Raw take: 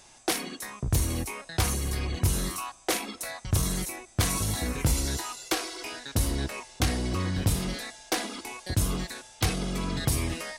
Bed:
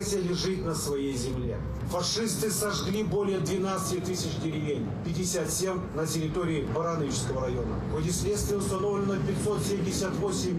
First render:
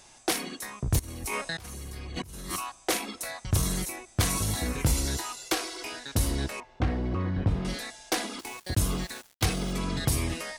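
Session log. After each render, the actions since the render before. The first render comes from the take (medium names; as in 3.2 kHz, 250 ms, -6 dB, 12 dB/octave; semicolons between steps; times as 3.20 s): 0.99–2.56 s: compressor with a negative ratio -38 dBFS; 6.60–7.65 s: Bessel low-pass 1.4 kHz; 8.39–9.73 s: small samples zeroed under -42.5 dBFS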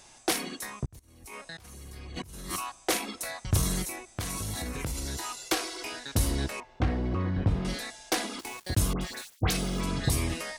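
0.86–2.69 s: fade in; 3.82–5.33 s: compression, threshold -30 dBFS; 8.93–10.10 s: phase dispersion highs, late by 82 ms, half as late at 1.9 kHz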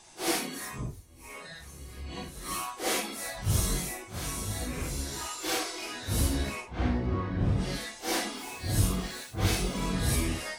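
phase randomisation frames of 200 ms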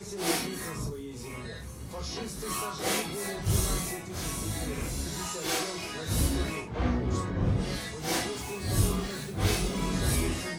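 add bed -10.5 dB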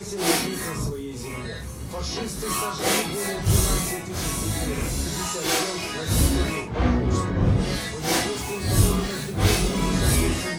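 trim +7 dB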